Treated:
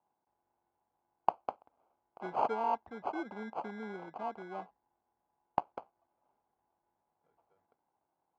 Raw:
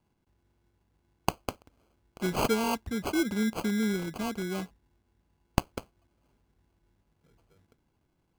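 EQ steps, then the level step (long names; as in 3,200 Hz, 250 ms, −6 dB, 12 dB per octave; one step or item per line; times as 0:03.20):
resonant band-pass 810 Hz, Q 3.4
high-frequency loss of the air 84 metres
+4.5 dB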